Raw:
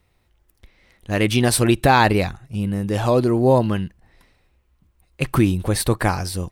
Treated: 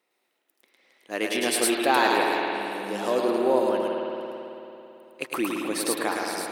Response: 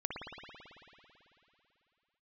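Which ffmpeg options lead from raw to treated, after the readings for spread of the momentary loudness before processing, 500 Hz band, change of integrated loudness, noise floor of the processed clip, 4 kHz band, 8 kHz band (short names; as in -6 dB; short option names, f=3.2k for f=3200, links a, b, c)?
11 LU, -4.0 dB, -6.0 dB, -75 dBFS, -3.0 dB, -3.0 dB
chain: -filter_complex "[0:a]highpass=f=290:w=0.5412,highpass=f=290:w=1.3066,asplit=2[a][b];[b]highshelf=f=3.1k:g=8.5[c];[1:a]atrim=start_sample=2205,adelay=107[d];[c][d]afir=irnorm=-1:irlink=0,volume=-3.5dB[e];[a][e]amix=inputs=2:normalize=0,volume=-7dB"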